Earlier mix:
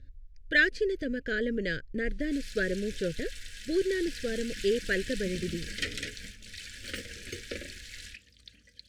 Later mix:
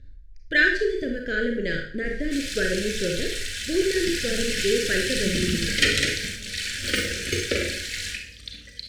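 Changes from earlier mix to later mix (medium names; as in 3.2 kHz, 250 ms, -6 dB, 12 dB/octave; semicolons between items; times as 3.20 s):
background +10.0 dB; reverb: on, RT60 0.55 s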